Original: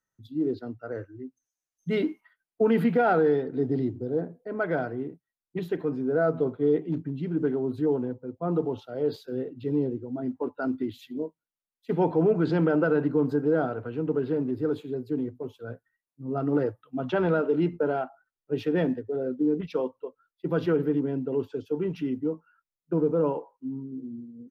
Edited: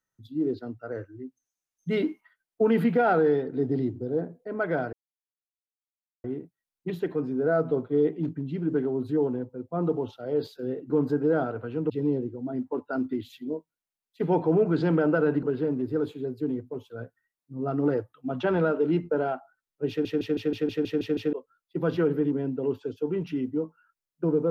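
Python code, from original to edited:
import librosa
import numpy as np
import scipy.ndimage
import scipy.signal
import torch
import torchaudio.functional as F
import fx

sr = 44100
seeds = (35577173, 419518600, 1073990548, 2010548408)

y = fx.edit(x, sr, fx.insert_silence(at_s=4.93, length_s=1.31),
    fx.move(start_s=13.12, length_s=1.0, to_s=9.59),
    fx.stutter_over(start_s=18.58, slice_s=0.16, count=9), tone=tone)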